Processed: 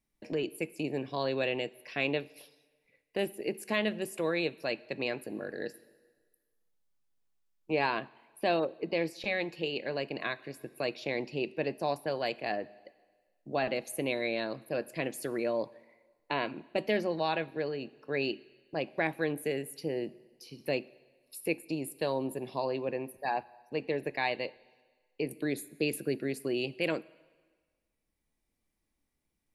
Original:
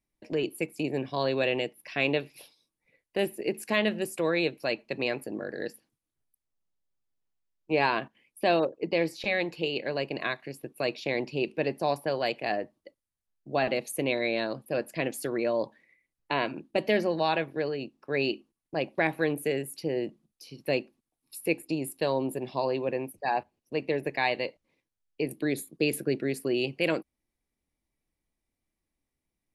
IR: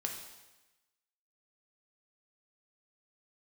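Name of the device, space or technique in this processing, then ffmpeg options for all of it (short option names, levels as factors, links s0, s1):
ducked reverb: -filter_complex "[0:a]asplit=3[s0][s1][s2];[1:a]atrim=start_sample=2205[s3];[s1][s3]afir=irnorm=-1:irlink=0[s4];[s2]apad=whole_len=1302978[s5];[s4][s5]sidechaincompress=threshold=0.01:ratio=16:attack=16:release=1050,volume=1.26[s6];[s0][s6]amix=inputs=2:normalize=0,volume=0.562"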